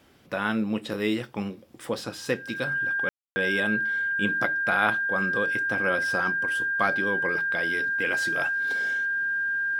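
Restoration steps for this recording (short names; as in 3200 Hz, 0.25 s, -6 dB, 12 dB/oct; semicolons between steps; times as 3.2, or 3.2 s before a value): notch 1600 Hz, Q 30; room tone fill 3.09–3.36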